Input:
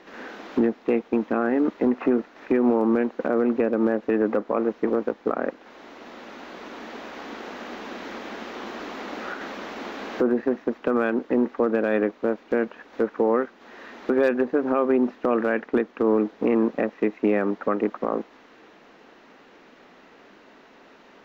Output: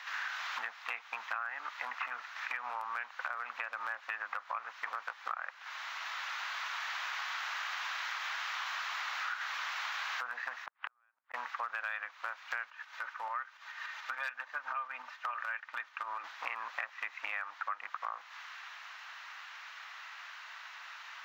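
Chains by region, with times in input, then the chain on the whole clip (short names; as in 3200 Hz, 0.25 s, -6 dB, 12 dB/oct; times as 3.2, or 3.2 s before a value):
10.66–11.34 air absorption 480 m + compressor 2:1, threshold -29 dBFS + flipped gate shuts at -21 dBFS, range -41 dB
12.7–16.24 tremolo saw up 6.9 Hz, depth 50% + comb 3.3 ms, depth 32% + flange 1.1 Hz, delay 1.6 ms, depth 2.6 ms, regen -65%
whole clip: inverse Chebyshev high-pass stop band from 420 Hz, stop band 50 dB; compressor 6:1, threshold -43 dBFS; gain +8 dB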